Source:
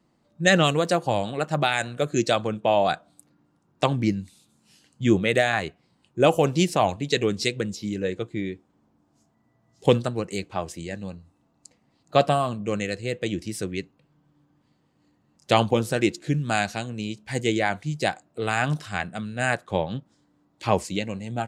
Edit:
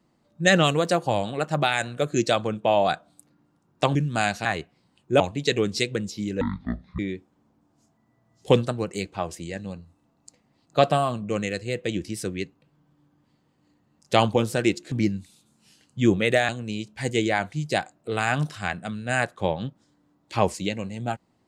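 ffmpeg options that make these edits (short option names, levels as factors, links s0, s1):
-filter_complex "[0:a]asplit=8[s0][s1][s2][s3][s4][s5][s6][s7];[s0]atrim=end=3.952[s8];[s1]atrim=start=16.288:end=16.792[s9];[s2]atrim=start=5.518:end=6.272[s10];[s3]atrim=start=6.848:end=8.064[s11];[s4]atrim=start=8.06:end=8.36,asetpts=PTS-STARTPTS,asetrate=22932,aresample=44100,atrim=end_sample=25442,asetpts=PTS-STARTPTS[s12];[s5]atrim=start=8.356:end=16.292[s13];[s6]atrim=start=3.948:end=5.522[s14];[s7]atrim=start=16.788[s15];[s8][s9]acrossfade=d=0.004:c1=hsin:c2=hsin[s16];[s16][s10]acrossfade=d=0.004:c1=hsin:c2=hsin[s17];[s17][s11]acrossfade=d=0.004:c1=hsin:c2=hsin[s18];[s18][s12]acrossfade=d=0.004:c1=hsin:c2=hsin[s19];[s19][s13]acrossfade=d=0.004:c1=hsin:c2=hsin[s20];[s20][s14]acrossfade=d=0.004:c1=hsin:c2=hsin[s21];[s21][s15]acrossfade=d=0.004:c1=hsin:c2=hsin"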